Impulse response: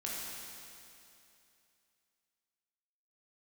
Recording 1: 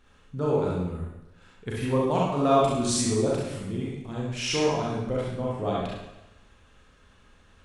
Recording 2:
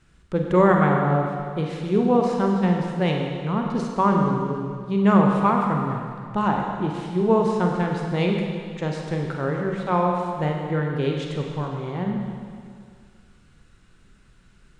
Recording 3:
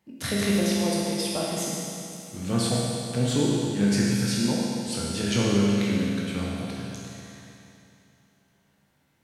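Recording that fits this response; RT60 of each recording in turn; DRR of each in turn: 3; 0.95, 2.1, 2.7 s; -5.5, 1.0, -5.5 dB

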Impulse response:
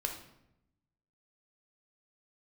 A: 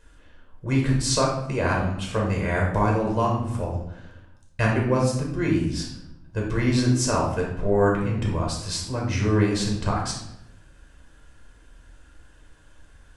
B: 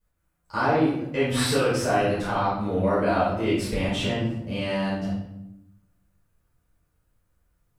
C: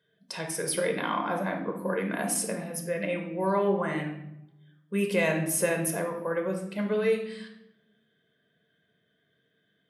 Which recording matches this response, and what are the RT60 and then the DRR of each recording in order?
C; 0.80, 0.80, 0.80 s; -2.0, -12.0, 3.0 dB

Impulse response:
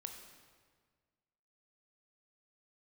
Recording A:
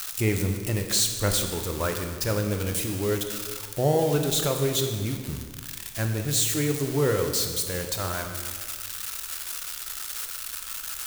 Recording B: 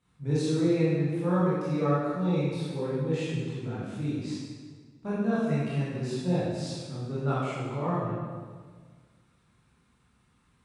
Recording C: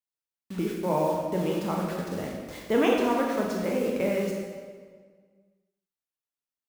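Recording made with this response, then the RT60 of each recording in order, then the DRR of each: A; 1.7, 1.7, 1.7 s; 4.0, -10.5, -1.5 dB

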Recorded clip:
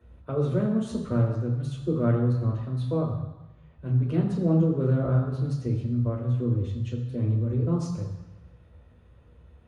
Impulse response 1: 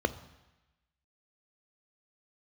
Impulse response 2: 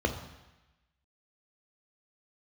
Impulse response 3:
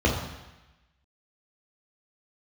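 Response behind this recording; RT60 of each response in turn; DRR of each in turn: 3; 1.0, 1.0, 1.0 s; 12.5, 5.0, -2.5 dB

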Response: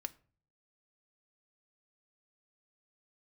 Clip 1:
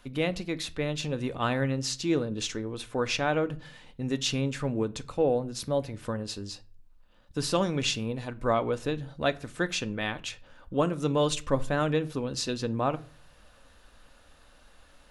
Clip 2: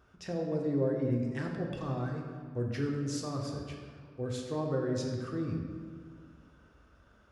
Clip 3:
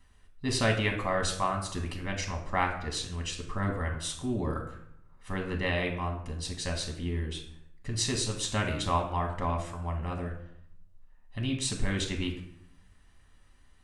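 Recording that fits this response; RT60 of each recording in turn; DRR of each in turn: 1; 0.45, 2.0, 0.70 s; 10.0, -0.5, 1.5 dB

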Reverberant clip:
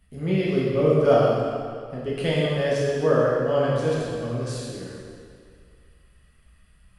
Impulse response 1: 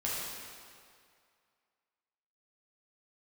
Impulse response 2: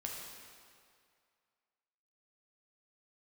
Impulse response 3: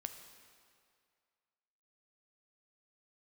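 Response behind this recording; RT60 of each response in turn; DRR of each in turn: 1; 2.2, 2.2, 2.2 s; -7.0, -2.0, 6.5 dB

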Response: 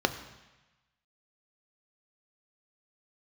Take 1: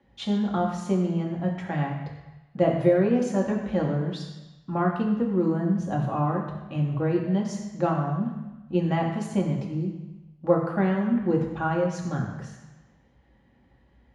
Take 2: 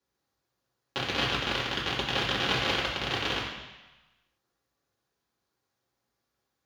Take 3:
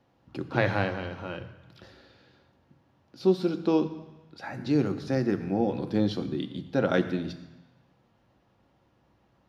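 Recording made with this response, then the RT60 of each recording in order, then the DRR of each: 3; 1.1, 1.1, 1.1 s; -2.0, -6.5, 7.5 dB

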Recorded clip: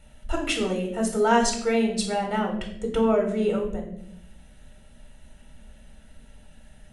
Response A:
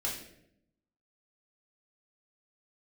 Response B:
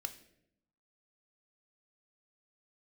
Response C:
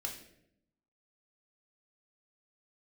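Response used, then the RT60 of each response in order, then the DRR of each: C; 0.75, 0.75, 0.75 s; -4.0, 8.5, 1.0 dB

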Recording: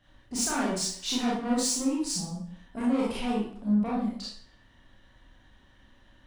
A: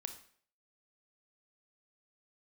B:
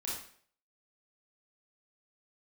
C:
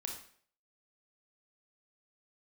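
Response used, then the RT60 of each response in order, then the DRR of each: B; 0.55, 0.55, 0.55 s; 7.0, -6.0, 1.0 dB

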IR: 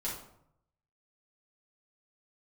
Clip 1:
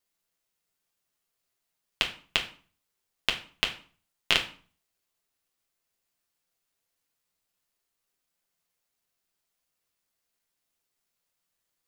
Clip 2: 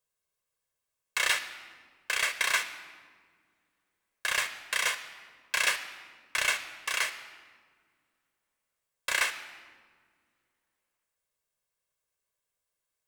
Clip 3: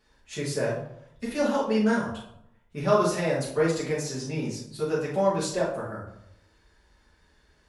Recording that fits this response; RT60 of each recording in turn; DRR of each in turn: 3; 0.45 s, not exponential, 0.70 s; 1.0, 10.5, -7.5 dB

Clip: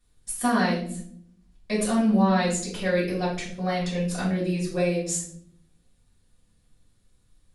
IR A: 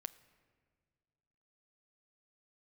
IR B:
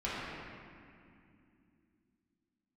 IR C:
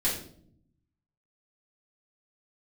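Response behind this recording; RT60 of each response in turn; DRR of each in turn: C; 1.9, 2.5, 0.60 s; 13.0, -10.5, -8.5 dB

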